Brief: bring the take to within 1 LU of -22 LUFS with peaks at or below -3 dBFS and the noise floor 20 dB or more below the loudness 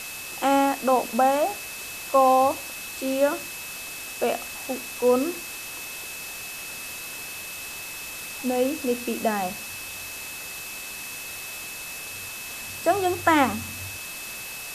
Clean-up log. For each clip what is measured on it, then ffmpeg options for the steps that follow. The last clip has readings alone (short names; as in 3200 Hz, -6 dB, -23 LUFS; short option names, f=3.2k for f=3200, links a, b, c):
steady tone 2600 Hz; tone level -38 dBFS; noise floor -37 dBFS; noise floor target -47 dBFS; loudness -26.5 LUFS; peak -6.0 dBFS; loudness target -22.0 LUFS
-> -af "bandreject=f=2.6k:w=30"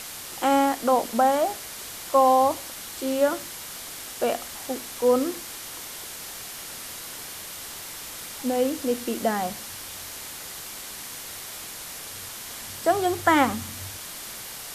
steady tone none; noise floor -38 dBFS; noise floor target -47 dBFS
-> -af "afftdn=nr=9:nf=-38"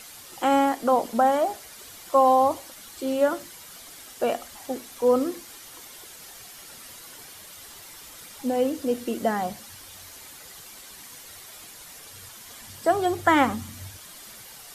noise floor -45 dBFS; loudness -24.0 LUFS; peak -6.0 dBFS; loudness target -22.0 LUFS
-> -af "volume=2dB"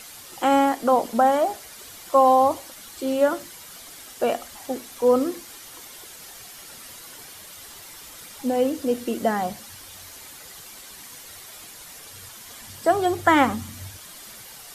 loudness -22.0 LUFS; peak -4.0 dBFS; noise floor -43 dBFS